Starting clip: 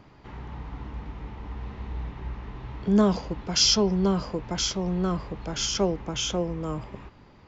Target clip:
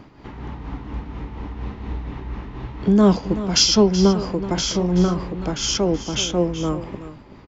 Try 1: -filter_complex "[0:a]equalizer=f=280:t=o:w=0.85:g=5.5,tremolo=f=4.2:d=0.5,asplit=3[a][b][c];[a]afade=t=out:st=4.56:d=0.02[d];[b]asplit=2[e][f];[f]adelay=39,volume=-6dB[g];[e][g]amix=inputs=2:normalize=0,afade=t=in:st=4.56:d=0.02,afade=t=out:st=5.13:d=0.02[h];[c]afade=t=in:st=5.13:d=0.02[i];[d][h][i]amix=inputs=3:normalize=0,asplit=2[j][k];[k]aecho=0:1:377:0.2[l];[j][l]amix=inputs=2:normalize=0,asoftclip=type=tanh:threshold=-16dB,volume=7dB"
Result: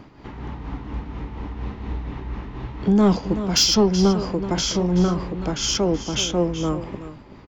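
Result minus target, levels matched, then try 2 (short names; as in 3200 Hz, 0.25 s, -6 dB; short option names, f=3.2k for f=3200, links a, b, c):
soft clip: distortion +20 dB
-filter_complex "[0:a]equalizer=f=280:t=o:w=0.85:g=5.5,tremolo=f=4.2:d=0.5,asplit=3[a][b][c];[a]afade=t=out:st=4.56:d=0.02[d];[b]asplit=2[e][f];[f]adelay=39,volume=-6dB[g];[e][g]amix=inputs=2:normalize=0,afade=t=in:st=4.56:d=0.02,afade=t=out:st=5.13:d=0.02[h];[c]afade=t=in:st=5.13:d=0.02[i];[d][h][i]amix=inputs=3:normalize=0,asplit=2[j][k];[k]aecho=0:1:377:0.2[l];[j][l]amix=inputs=2:normalize=0,asoftclip=type=tanh:threshold=-4dB,volume=7dB"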